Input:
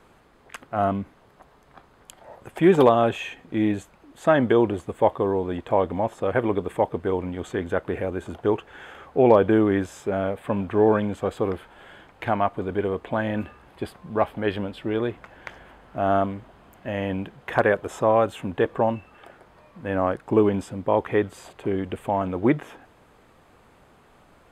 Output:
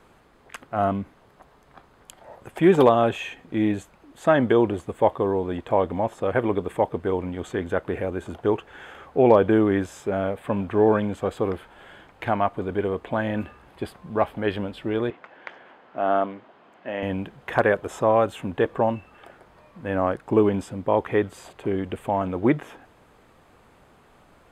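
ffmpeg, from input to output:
ffmpeg -i in.wav -filter_complex "[0:a]asettb=1/sr,asplit=3[link_01][link_02][link_03];[link_01]atrim=end=15.104[link_04];[link_02]atrim=start=15.1:end=17.03,asetpts=PTS-STARTPTS,afade=type=in:duration=0.004:curve=qsin,afade=type=out:start_time=1.926:duration=0.004:curve=qsin,highpass=280,lowpass=3900[link_05];[link_03]atrim=start=17.026[link_06];[link_04][link_05]acrossfade=duration=0.004:curve1=hsin:curve2=qsin[link_07];[link_07][link_06]acrossfade=duration=0.004:curve1=qsin:curve2=hsin" out.wav

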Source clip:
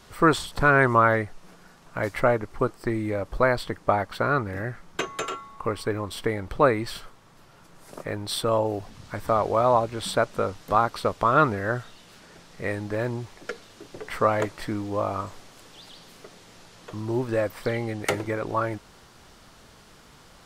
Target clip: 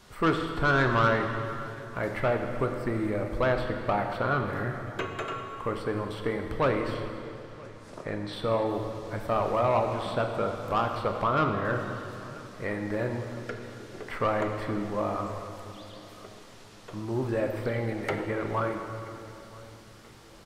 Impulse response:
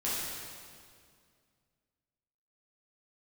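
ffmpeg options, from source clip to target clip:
-filter_complex "[0:a]asettb=1/sr,asplit=3[link_01][link_02][link_03];[link_01]atrim=end=6.944[link_04];[link_02]atrim=start=6.94:end=8.33,asetpts=PTS-STARTPTS,afade=type=in:duration=0.004:curve=qsin,afade=type=out:start_time=1.386:duration=0.004:curve=qsin,lowpass=7200[link_05];[link_03]atrim=start=8.326[link_06];[link_04][link_05]acrossfade=duration=0.004:curve1=hsin:curve2=qsin[link_07];[link_07][link_06]acrossfade=duration=0.004:curve1=qsin:curve2=hsin,asettb=1/sr,asplit=3[link_08][link_09][link_10];[link_08]atrim=end=11.244[link_11];[link_09]atrim=start=11.24:end=11.65,asetpts=PTS-STARTPTS,afade=type=in:duration=0.004:curve=qsin,afade=type=out:start_time=0.406:duration=0.004:curve=qsin,highshelf=frequency=3100:gain=-11.5[link_12];[link_10]atrim=start=11.646[link_13];[link_11][link_12]acrossfade=duration=0.004:curve1=hsin:curve2=qsin[link_14];[link_14][link_13]acrossfade=duration=0.004:curve1=qsin:curve2=hsin,acrossover=split=3100[link_15][link_16];[link_15]asoftclip=type=tanh:threshold=-15.5dB[link_17];[link_16]acompressor=threshold=-53dB:ratio=5[link_18];[link_17][link_18]amix=inputs=2:normalize=0,aecho=1:1:980|1960|2940|3920:0.0708|0.0382|0.0206|0.0111,asplit=2[link_19][link_20];[1:a]atrim=start_sample=2205,asetrate=32634,aresample=44100[link_21];[link_20][link_21]afir=irnorm=-1:irlink=0,volume=-10.5dB[link_22];[link_19][link_22]amix=inputs=2:normalize=0,volume=-5dB"

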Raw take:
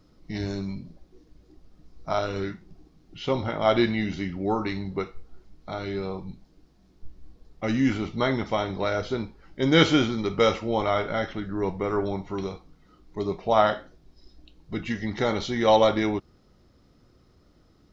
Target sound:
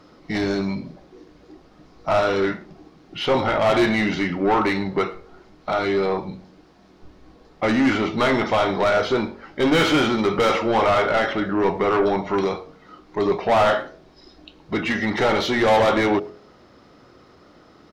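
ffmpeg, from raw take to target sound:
ffmpeg -i in.wav -filter_complex "[0:a]asplit=2[link_01][link_02];[link_02]highpass=frequency=720:poles=1,volume=30dB,asoftclip=type=tanh:threshold=-3.5dB[link_03];[link_01][link_03]amix=inputs=2:normalize=0,lowpass=frequency=1600:poles=1,volume=-6dB,bandreject=frequency=46.29:width_type=h:width=4,bandreject=frequency=92.58:width_type=h:width=4,bandreject=frequency=138.87:width_type=h:width=4,bandreject=frequency=185.16:width_type=h:width=4,bandreject=frequency=231.45:width_type=h:width=4,bandreject=frequency=277.74:width_type=h:width=4,bandreject=frequency=324.03:width_type=h:width=4,bandreject=frequency=370.32:width_type=h:width=4,bandreject=frequency=416.61:width_type=h:width=4,bandreject=frequency=462.9:width_type=h:width=4,bandreject=frequency=509.19:width_type=h:width=4,bandreject=frequency=555.48:width_type=h:width=4,bandreject=frequency=601.77:width_type=h:width=4,bandreject=frequency=648.06:width_type=h:width=4,bandreject=frequency=694.35:width_type=h:width=4,asplit=2[link_04][link_05];[link_05]adelay=110,highpass=300,lowpass=3400,asoftclip=type=hard:threshold=-12.5dB,volume=-23dB[link_06];[link_04][link_06]amix=inputs=2:normalize=0,volume=-4.5dB" out.wav

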